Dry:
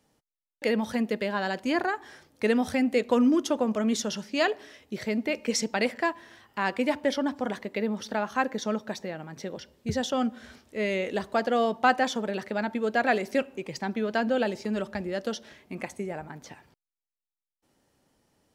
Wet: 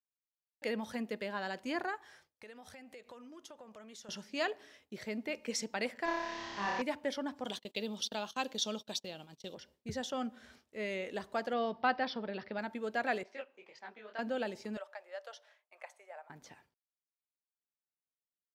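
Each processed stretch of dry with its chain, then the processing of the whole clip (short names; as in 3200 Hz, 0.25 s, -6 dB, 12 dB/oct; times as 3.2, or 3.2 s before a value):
1.96–4.09 bell 260 Hz -9.5 dB 1.1 oct + compressor 4:1, threshold -41 dBFS
6.05–6.82 delta modulation 32 kbps, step -36.5 dBFS + flutter echo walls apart 5.1 m, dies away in 1.4 s
7.44–9.55 gate -42 dBFS, range -25 dB + resonant high shelf 2500 Hz +9 dB, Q 3
11.53–12.59 low shelf 140 Hz +7 dB + careless resampling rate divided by 4×, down none, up filtered
13.23–14.19 HPF 550 Hz + air absorption 160 m + detuned doubles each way 53 cents
14.77–16.3 Chebyshev high-pass 580 Hz, order 4 + high shelf 2500 Hz -8.5 dB
whole clip: expander -50 dBFS; low shelf 420 Hz -4 dB; gain -8.5 dB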